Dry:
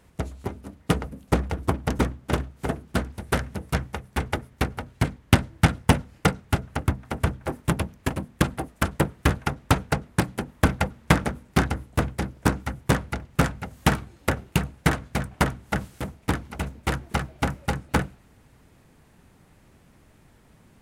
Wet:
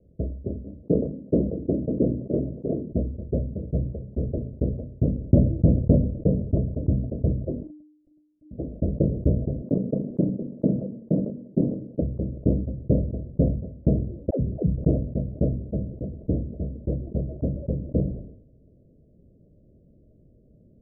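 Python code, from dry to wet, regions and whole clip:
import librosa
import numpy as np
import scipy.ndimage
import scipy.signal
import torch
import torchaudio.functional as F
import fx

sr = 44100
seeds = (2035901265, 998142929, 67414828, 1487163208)

y = fx.chain(x, sr, fx.highpass(hz=150.0, slope=12),
    fx.peak_eq(hz=350.0, db=3.5, octaves=0.88),
    fx.sustainer(db_per_s=120.0), at=(0.83, 2.92))
y = fx.chain(y, sr, fx.octave_resonator(note='F', decay_s=0.47),
    fx.ring_mod(carrier_hz=1700.0),
    fx.env_flatten(amount_pct=70), at=(7.63, 8.51))
y = fx.chain(y, sr, fx.highpass(hz=180.0, slope=24),
    fx.level_steps(step_db=11),
    fx.tilt_eq(slope=-2.5), at=(9.62, 12.02))
y = fx.chain(y, sr, fx.dispersion(late='lows', ms=104.0, hz=360.0),
    fx.band_squash(depth_pct=100), at=(14.3, 14.76))
y = scipy.signal.sosfilt(scipy.signal.butter(16, 630.0, 'lowpass', fs=sr, output='sos'), y)
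y = fx.sustainer(y, sr, db_per_s=75.0)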